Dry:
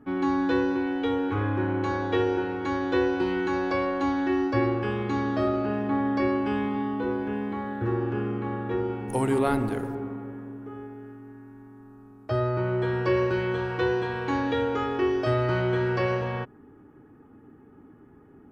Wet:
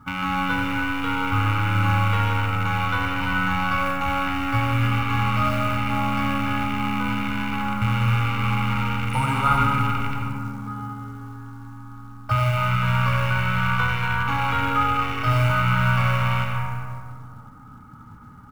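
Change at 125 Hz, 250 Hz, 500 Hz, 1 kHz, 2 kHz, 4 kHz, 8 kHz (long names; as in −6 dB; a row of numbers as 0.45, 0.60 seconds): +10.0, −1.0, −9.0, +8.5, +9.5, +10.5, +8.0 decibels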